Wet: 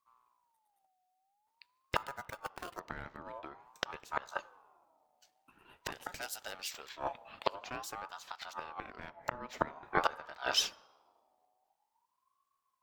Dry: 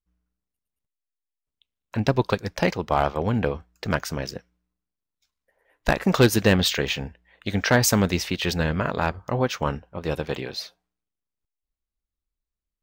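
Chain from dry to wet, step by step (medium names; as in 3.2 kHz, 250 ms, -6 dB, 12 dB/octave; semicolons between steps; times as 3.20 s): 5.92–6.89 s: tone controls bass -15 dB, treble +12 dB; in parallel at 0 dB: compression 12:1, threshold -29 dBFS, peak gain reduction 17.5 dB; on the sum: inverted gate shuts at -14 dBFS, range -24 dB; 1.96–2.80 s: sample-rate reducer 5.9 kHz, jitter 0%; on a send at -19 dB: distance through air 160 m + reverberation RT60 1.4 s, pre-delay 6 ms; on the sum: ring modulator with a swept carrier 920 Hz, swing 20%, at 0.48 Hz; trim +1 dB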